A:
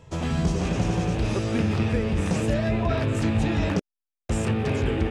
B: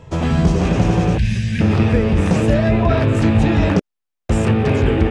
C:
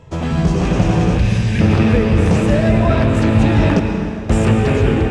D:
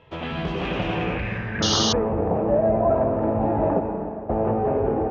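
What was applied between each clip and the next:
gain on a spectral selection 0:01.18–0:01.61, 220–1,500 Hz −23 dB; high-shelf EQ 3,900 Hz −8 dB; level +9 dB
automatic gain control; convolution reverb RT60 2.9 s, pre-delay 97 ms, DRR 5 dB; level −2 dB
low-pass filter sweep 3,200 Hz → 760 Hz, 0:00.89–0:02.20; sound drawn into the spectrogram noise, 0:01.62–0:01.93, 2,800–6,700 Hz −13 dBFS; bass and treble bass −10 dB, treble −7 dB; level −6 dB

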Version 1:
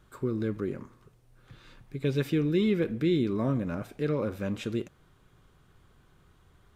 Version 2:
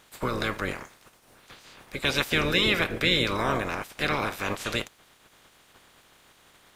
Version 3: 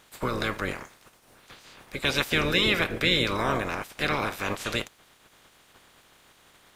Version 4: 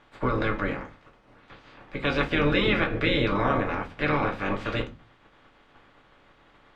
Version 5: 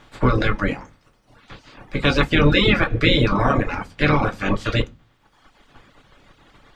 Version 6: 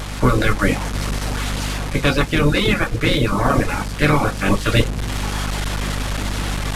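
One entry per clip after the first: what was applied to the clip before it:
ceiling on every frequency bin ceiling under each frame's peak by 29 dB; level +2 dB
no processing that can be heard
low-pass filter 2,300 Hz 12 dB per octave; convolution reverb RT60 0.25 s, pre-delay 3 ms, DRR 2.5 dB
bass and treble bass +6 dB, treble +10 dB; reverb reduction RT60 1.2 s; level +6.5 dB
linear delta modulator 64 kbit/s, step −27.5 dBFS; mains hum 50 Hz, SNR 10 dB; speech leveller within 4 dB 0.5 s; level +3 dB

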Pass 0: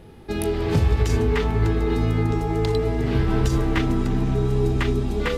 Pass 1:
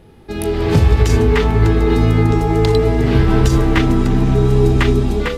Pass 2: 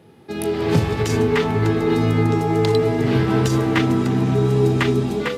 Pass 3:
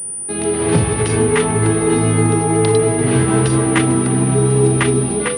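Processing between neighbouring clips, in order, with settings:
automatic gain control
high-pass filter 110 Hz 24 dB per octave; level −2.5 dB
mains-hum notches 50/100/150/200/250 Hz; switching amplifier with a slow clock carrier 9,400 Hz; level +3.5 dB

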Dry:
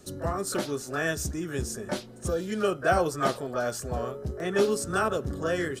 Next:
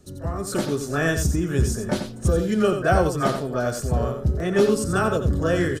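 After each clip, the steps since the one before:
low-shelf EQ 220 Hz +11 dB
automatic gain control gain up to 10.5 dB
on a send: single-tap delay 89 ms −8 dB
on the sum: level −5.5 dB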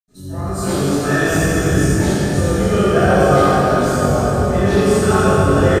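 double-tracking delay 21 ms −4 dB
convolution reverb RT60 4.8 s, pre-delay 77 ms
level −3 dB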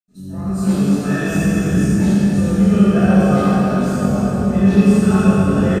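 hollow resonant body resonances 200/2,600 Hz, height 17 dB, ringing for 85 ms
level −7 dB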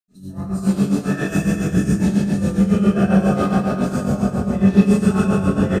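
amplitude tremolo 7.3 Hz, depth 67%

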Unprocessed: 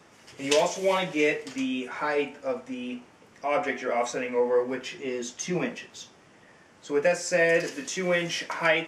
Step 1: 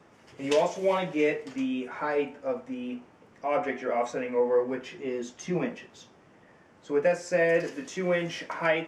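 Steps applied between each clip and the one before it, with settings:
high-shelf EQ 2,300 Hz −11 dB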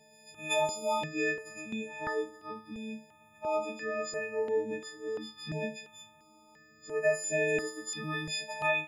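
every partial snapped to a pitch grid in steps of 6 semitones
step-sequenced phaser 2.9 Hz 330–4,600 Hz
level −4.5 dB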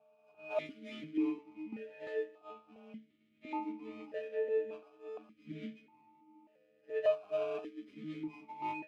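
running median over 25 samples
formant filter that steps through the vowels 1.7 Hz
level +7 dB

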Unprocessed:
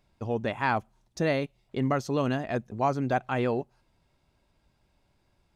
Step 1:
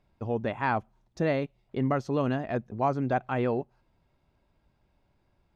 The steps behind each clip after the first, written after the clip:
low-pass filter 2,100 Hz 6 dB per octave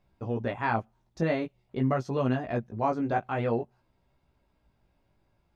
chorus effect 0.48 Hz, delay 15.5 ms, depth 2.8 ms
level +2.5 dB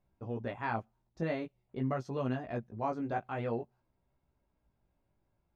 one half of a high-frequency compander decoder only
level −7 dB

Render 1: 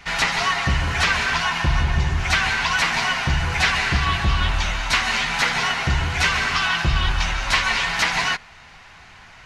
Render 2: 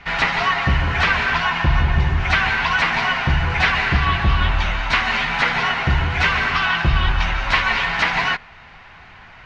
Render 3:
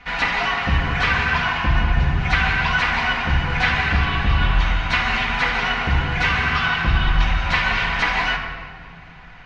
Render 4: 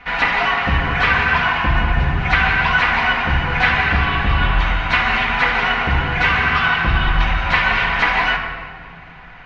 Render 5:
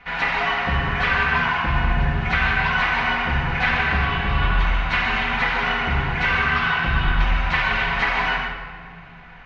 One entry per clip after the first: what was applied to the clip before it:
low-pass filter 3,000 Hz 12 dB per octave; level +3 dB
convolution reverb RT60 1.9 s, pre-delay 4 ms, DRR 1 dB; level −4 dB
bass and treble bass −4 dB, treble −10 dB; level +4.5 dB
reverb whose tail is shaped and stops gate 180 ms flat, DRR 3 dB; level −6 dB

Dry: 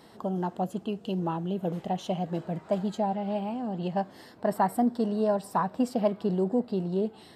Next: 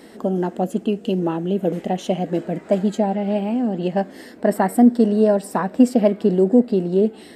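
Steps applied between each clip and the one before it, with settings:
octave-band graphic EQ 125/250/500/1,000/2,000/4,000/8,000 Hz −11/+8/+4/−8/+6/−4/+4 dB
level +7.5 dB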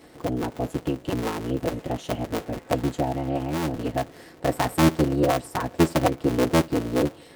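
sub-harmonics by changed cycles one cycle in 3, inverted
notch comb filter 200 Hz
level −5 dB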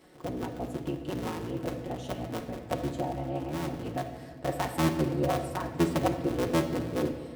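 rectangular room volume 1,600 cubic metres, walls mixed, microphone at 1 metre
level −8 dB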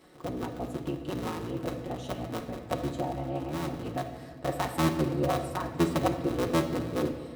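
hollow resonant body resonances 1,200/3,900 Hz, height 7 dB, ringing for 25 ms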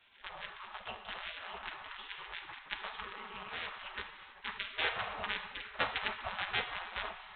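gate on every frequency bin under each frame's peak −20 dB weak
level +6 dB
A-law companding 64 kbit/s 8,000 Hz

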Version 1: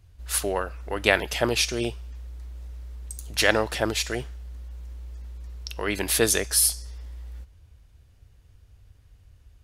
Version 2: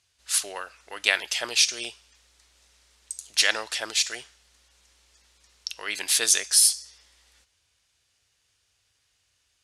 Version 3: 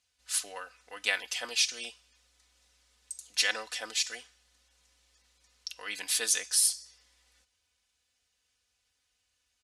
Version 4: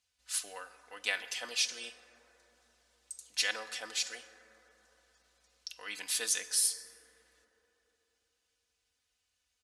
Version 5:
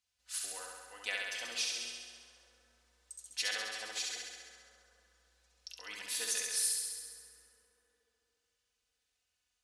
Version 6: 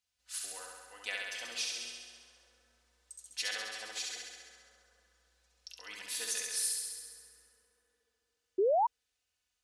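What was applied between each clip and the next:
meter weighting curve ITU-R 468; level −6.5 dB
comb filter 4 ms, depth 74%; level −8.5 dB
dense smooth reverb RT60 4 s, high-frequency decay 0.25×, DRR 11.5 dB; level −4 dB
flutter between parallel walls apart 11.5 metres, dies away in 1.4 s; level −5.5 dB
sound drawn into the spectrogram rise, 0:08.58–0:08.87, 360–1,000 Hz −26 dBFS; level −1 dB

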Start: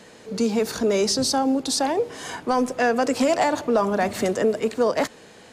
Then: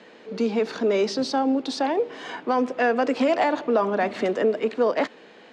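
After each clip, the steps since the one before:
Chebyshev band-pass filter 260–3,100 Hz, order 2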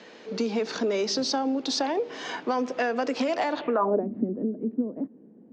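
downward compressor, threshold −23 dBFS, peak gain reduction 7 dB
low-pass filter sweep 6,100 Hz → 240 Hz, 0:03.52–0:04.08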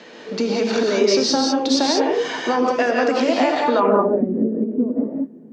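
reverb whose tail is shaped and stops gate 220 ms rising, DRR −0.5 dB
level +5.5 dB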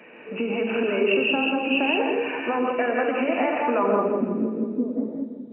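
hearing-aid frequency compression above 2,200 Hz 4 to 1
echo with a time of its own for lows and highs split 330 Hz, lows 405 ms, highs 166 ms, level −11 dB
level −5.5 dB

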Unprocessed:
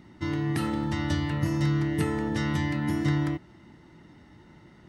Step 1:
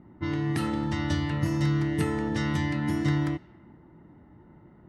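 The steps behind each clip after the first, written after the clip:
low-pass that shuts in the quiet parts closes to 1,000 Hz, open at −22.5 dBFS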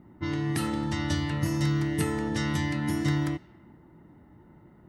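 high-shelf EQ 5,600 Hz +10.5 dB
level −1 dB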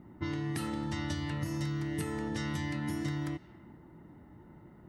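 downward compressor 5 to 1, threshold −32 dBFS, peak gain reduction 10 dB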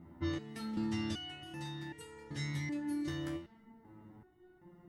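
step-sequenced resonator 2.6 Hz 84–470 Hz
level +7.5 dB

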